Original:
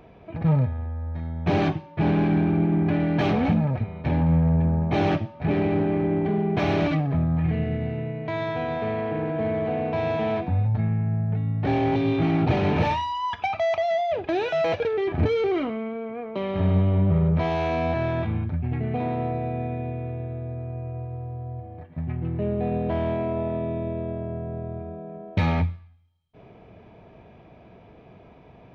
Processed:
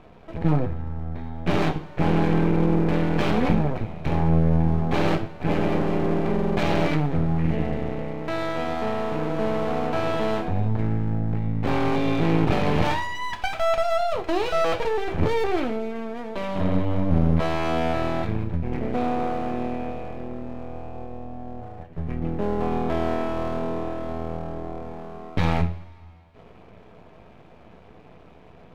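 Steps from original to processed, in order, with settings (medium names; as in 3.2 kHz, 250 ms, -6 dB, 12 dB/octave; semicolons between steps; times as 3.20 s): half-wave rectifier; two-slope reverb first 0.34 s, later 2.6 s, from -20 dB, DRR 6.5 dB; trim +3.5 dB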